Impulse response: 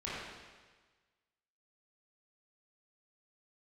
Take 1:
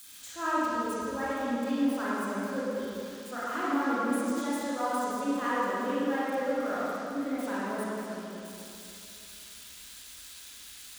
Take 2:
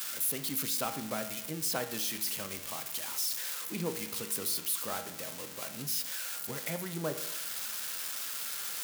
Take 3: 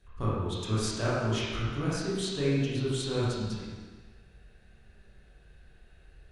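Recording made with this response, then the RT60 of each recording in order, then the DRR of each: 3; 2.8, 0.90, 1.4 s; -10.0, 7.0, -9.5 dB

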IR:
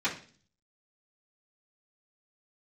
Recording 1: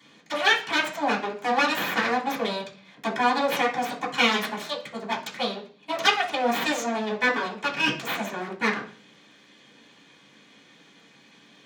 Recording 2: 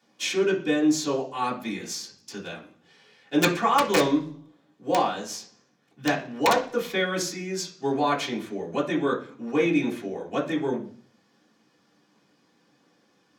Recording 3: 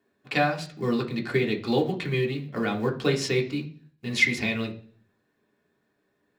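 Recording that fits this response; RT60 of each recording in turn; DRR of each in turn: 1; 0.40, 0.40, 0.45 s; -12.5, -6.5, 0.0 dB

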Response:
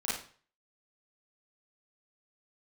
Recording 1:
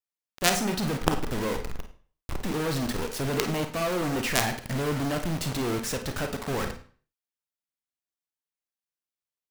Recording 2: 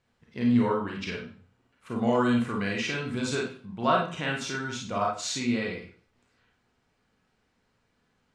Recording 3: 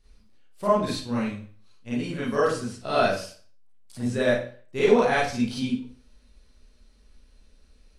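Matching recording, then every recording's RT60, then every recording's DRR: 3; 0.45, 0.45, 0.45 s; 5.5, -2.0, -9.0 dB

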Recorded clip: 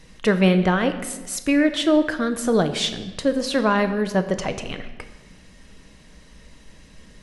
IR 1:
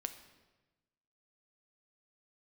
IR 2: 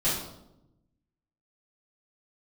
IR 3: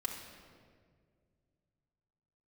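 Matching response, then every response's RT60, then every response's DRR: 1; 1.2, 0.85, 2.0 s; 8.0, -12.0, 0.0 dB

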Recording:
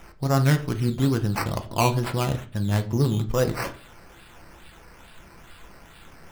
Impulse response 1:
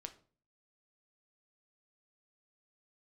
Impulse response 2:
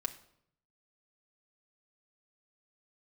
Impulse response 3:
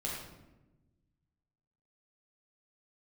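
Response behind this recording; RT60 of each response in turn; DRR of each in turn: 1; 0.45, 0.70, 1.1 s; 6.5, 3.0, -4.5 dB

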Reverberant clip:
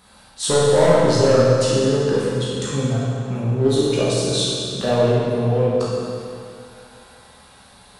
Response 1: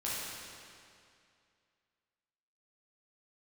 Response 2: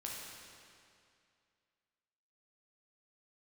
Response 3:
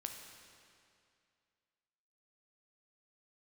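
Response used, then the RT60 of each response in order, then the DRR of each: 1; 2.4, 2.4, 2.4 s; -8.5, -3.5, 3.0 dB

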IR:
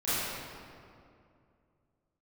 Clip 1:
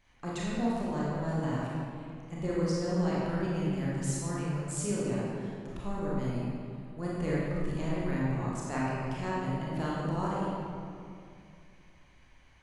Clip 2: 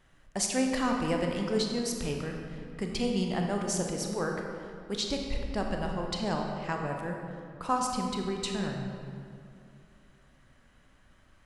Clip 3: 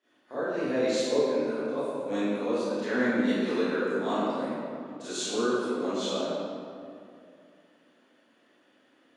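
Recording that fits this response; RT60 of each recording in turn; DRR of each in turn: 3; 2.4, 2.5, 2.4 s; -7.0, 1.0, -16.0 dB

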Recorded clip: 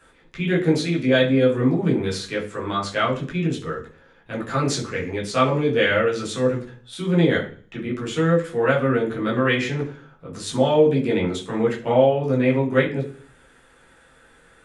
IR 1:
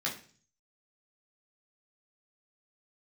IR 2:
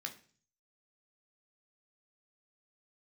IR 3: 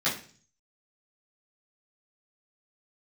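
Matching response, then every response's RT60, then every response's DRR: 1; 0.45, 0.45, 0.45 s; -5.0, 2.5, -11.5 dB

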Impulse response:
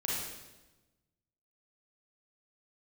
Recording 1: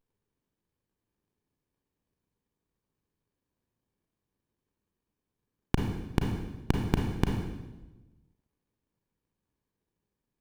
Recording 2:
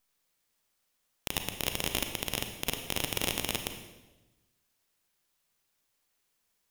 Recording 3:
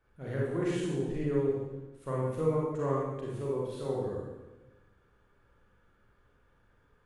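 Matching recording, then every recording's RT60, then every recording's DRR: 3; 1.1, 1.1, 1.1 s; 1.5, 6.0, -6.0 dB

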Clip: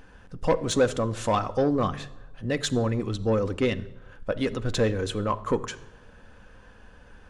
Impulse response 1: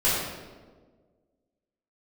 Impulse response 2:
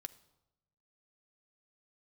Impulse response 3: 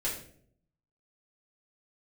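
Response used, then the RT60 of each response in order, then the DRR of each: 2; 1.5, 0.95, 0.60 s; -11.5, 9.5, -6.5 dB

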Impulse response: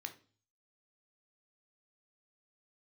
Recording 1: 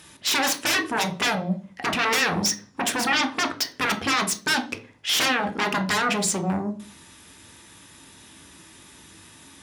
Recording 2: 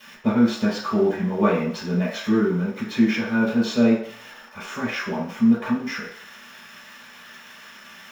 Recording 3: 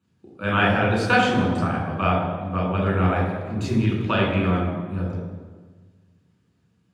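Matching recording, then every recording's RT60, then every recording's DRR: 1; 0.40, 0.60, 1.4 s; 6.0, -16.5, -3.5 dB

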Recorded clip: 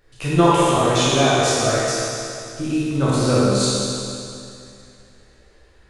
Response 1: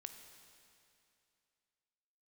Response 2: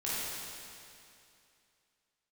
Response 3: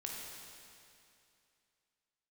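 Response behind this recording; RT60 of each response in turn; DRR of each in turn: 2; 2.6, 2.6, 2.6 s; 6.5, -9.5, -2.0 dB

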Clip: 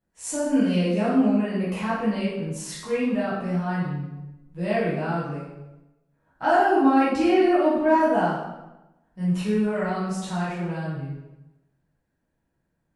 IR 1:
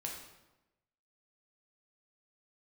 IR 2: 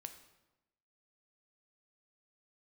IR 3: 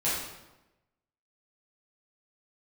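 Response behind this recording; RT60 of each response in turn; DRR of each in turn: 3; 1.0, 1.0, 1.0 s; -1.0, 7.0, -10.5 dB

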